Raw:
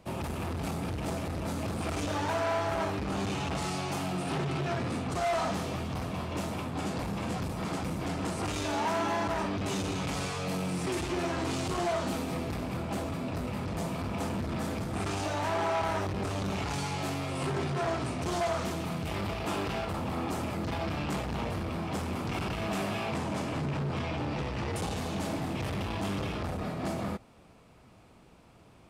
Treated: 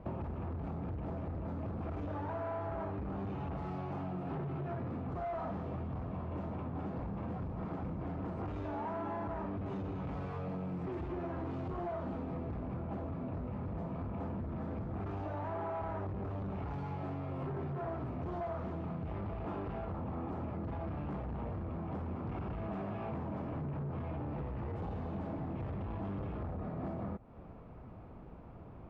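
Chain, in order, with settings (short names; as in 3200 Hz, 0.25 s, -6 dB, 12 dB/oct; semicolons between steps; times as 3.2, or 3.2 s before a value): LPF 1200 Hz 12 dB/oct; low shelf 91 Hz +8 dB; compressor, threshold -42 dBFS, peak gain reduction 13.5 dB; gain +4.5 dB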